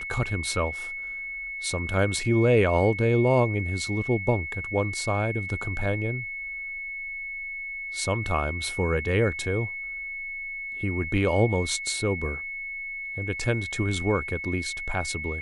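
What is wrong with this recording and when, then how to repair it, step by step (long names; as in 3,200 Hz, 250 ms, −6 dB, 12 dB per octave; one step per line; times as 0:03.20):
whistle 2,200 Hz −32 dBFS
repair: notch filter 2,200 Hz, Q 30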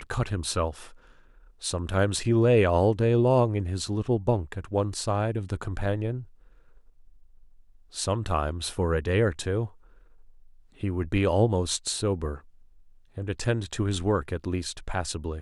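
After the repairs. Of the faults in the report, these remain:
none of them is left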